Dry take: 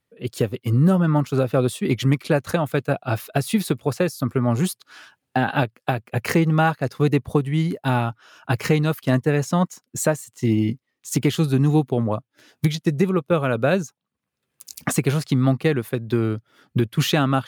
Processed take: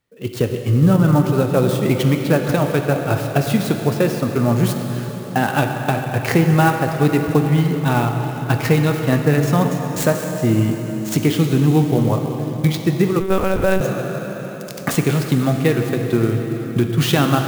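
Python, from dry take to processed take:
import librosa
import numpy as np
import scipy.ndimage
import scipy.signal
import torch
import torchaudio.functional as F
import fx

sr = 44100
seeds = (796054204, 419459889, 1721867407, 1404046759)

y = fx.rev_plate(x, sr, seeds[0], rt60_s=4.8, hf_ratio=0.8, predelay_ms=0, drr_db=3.5)
y = fx.lpc_monotone(y, sr, seeds[1], pitch_hz=190.0, order=10, at=(13.2, 13.81))
y = fx.clock_jitter(y, sr, seeds[2], jitter_ms=0.022)
y = y * 10.0 ** (2.5 / 20.0)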